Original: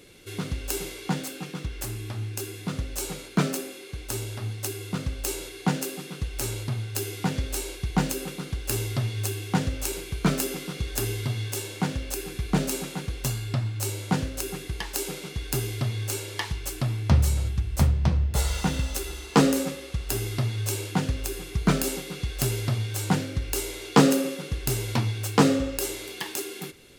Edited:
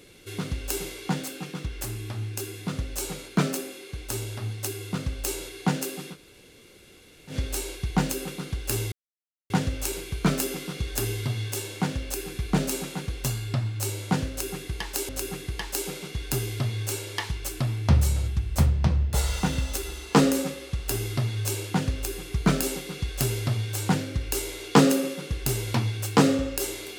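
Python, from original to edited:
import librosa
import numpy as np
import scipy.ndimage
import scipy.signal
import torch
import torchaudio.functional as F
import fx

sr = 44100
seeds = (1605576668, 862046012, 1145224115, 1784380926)

y = fx.edit(x, sr, fx.room_tone_fill(start_s=6.14, length_s=1.18, crossfade_s=0.1),
    fx.silence(start_s=8.92, length_s=0.58),
    fx.repeat(start_s=14.3, length_s=0.79, count=2), tone=tone)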